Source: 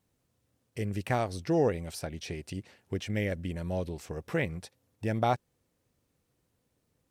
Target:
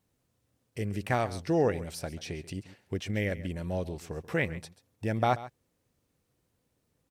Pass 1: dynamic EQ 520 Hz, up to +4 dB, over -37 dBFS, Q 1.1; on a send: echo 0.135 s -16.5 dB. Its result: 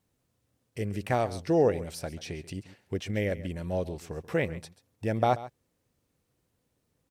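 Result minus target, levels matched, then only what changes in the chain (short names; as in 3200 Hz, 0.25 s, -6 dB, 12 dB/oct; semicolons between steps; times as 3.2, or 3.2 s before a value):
2000 Hz band -4.0 dB
change: dynamic EQ 1700 Hz, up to +4 dB, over -37 dBFS, Q 1.1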